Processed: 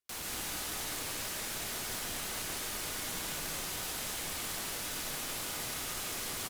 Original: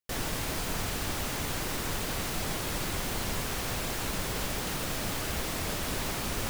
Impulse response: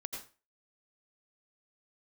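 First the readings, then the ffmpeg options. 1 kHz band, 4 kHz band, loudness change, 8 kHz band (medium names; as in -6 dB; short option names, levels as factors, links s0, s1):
-6.5 dB, -2.5 dB, -3.5 dB, -0.5 dB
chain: -filter_complex "[0:a]aecho=1:1:2.8:0.38,alimiter=level_in=1.58:limit=0.0631:level=0:latency=1:release=22,volume=0.631,aeval=exprs='(mod(53.1*val(0)+1,2)-1)/53.1':c=same[s0];[1:a]atrim=start_sample=2205,asetrate=26901,aresample=44100[s1];[s0][s1]afir=irnorm=-1:irlink=0"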